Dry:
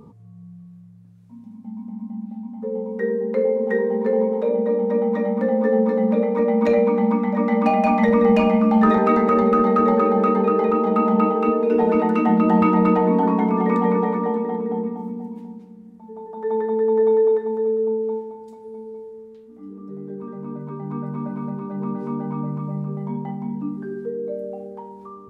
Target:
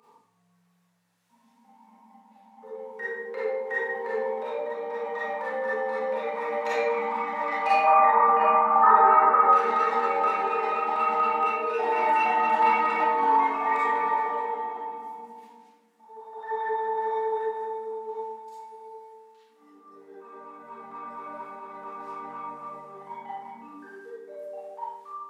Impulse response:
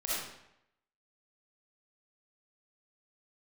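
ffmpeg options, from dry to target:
-filter_complex "[0:a]highpass=910,flanger=delay=0.4:depth=4.3:regen=72:speed=0.36:shape=triangular,asettb=1/sr,asplit=3[link_01][link_02][link_03];[link_01]atrim=end=7.834[link_04];[link_02]atrim=start=7.83:end=9.49,asetpts=PTS-STARTPTS,afade=type=in:duration=0.004:curve=qsin,afade=type=out:start_time=1.656:duration=0.004:curve=qsin,lowpass=frequency=1200:width_type=q:width=2.8[link_05];[link_03]atrim=start=9.486[link_06];[link_04][link_05]acrossfade=duration=0.004:curve1=hsin:curve2=qsin[link_07];[link_07][link_06]acrossfade=duration=0.004:curve1=qsin:curve2=hsin[link_08];[1:a]atrim=start_sample=2205,asetrate=61740,aresample=44100[link_09];[link_08][link_09]afir=irnorm=-1:irlink=0,volume=6dB"

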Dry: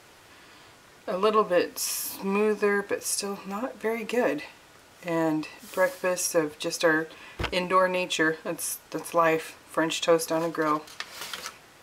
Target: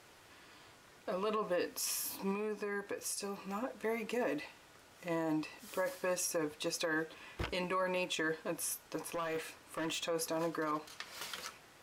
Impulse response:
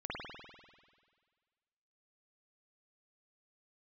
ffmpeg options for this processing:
-filter_complex "[0:a]alimiter=limit=-19.5dB:level=0:latency=1:release=30,asettb=1/sr,asplit=3[link_01][link_02][link_03];[link_01]atrim=end=2.314[link_04];[link_02]atrim=start=2.31:end=3.43,asetpts=PTS-STARTPTS,afade=type=in:duration=0.004:curve=qsin,afade=type=out:start_time=1.116:duration=0.004:curve=qsin,acompressor=threshold=-30dB:ratio=2.5[link_05];[link_03]atrim=start=3.426[link_06];[link_04][link_05]acrossfade=duration=0.004:curve1=hsin:curve2=qsin[link_07];[link_07][link_06]acrossfade=duration=0.004:curve1=qsin:curve2=hsin,asettb=1/sr,asplit=3[link_08][link_09][link_10];[link_08]atrim=end=8.964[link_11];[link_09]atrim=start=8.96:end=10.05,asetpts=PTS-STARTPTS,afade=type=in:duration=0.004:curve=qsin,afade=type=out:start_time=1.086:duration=0.004:curve=qsin,volume=26.5dB,asoftclip=hard,volume=-26.5dB[link_12];[link_10]atrim=start=10.046[link_13];[link_11][link_12]acrossfade=duration=0.004:curve1=hsin:curve2=qsin[link_14];[link_14][link_13]acrossfade=duration=0.004:curve1=qsin:curve2=hsin,volume=-7dB"

